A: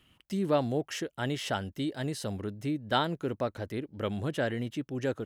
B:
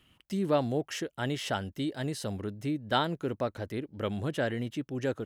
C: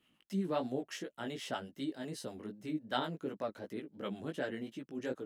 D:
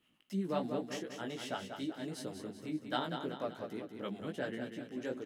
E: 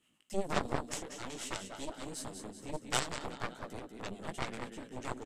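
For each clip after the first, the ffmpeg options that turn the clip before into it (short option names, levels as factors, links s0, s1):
-af anull
-filter_complex "[0:a]lowshelf=f=140:t=q:w=1.5:g=-11,flanger=delay=15:depth=4.2:speed=2.7,acrossover=split=600[s0][s1];[s0]aeval=exprs='val(0)*(1-0.5/2+0.5/2*cos(2*PI*8*n/s))':c=same[s2];[s1]aeval=exprs='val(0)*(1-0.5/2-0.5/2*cos(2*PI*8*n/s))':c=same[s3];[s2][s3]amix=inputs=2:normalize=0,volume=0.75"
-af "aecho=1:1:191|382|573|764|955|1146:0.447|0.214|0.103|0.0494|0.0237|0.0114,volume=0.891"
-af "aeval=exprs='0.106*(cos(1*acos(clip(val(0)/0.106,-1,1)))-cos(1*PI/2))+0.0188*(cos(6*acos(clip(val(0)/0.106,-1,1)))-cos(6*PI/2))+0.0266*(cos(7*acos(clip(val(0)/0.106,-1,1)))-cos(7*PI/2))':c=same,aresample=32000,aresample=44100,equalizer=f=7900:w=1.8:g=13.5,volume=1.19"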